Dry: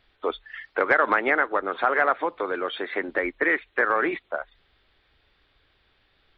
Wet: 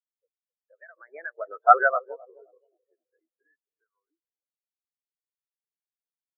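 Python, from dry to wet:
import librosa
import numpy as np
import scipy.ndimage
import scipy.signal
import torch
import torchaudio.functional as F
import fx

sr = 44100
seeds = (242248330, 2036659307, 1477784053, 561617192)

y = fx.doppler_pass(x, sr, speed_mps=35, closest_m=10.0, pass_at_s=1.62)
y = fx.echo_banded(y, sr, ms=262, feedback_pct=66, hz=580.0, wet_db=-5.5)
y = fx.spectral_expand(y, sr, expansion=4.0)
y = y * librosa.db_to_amplitude(6.0)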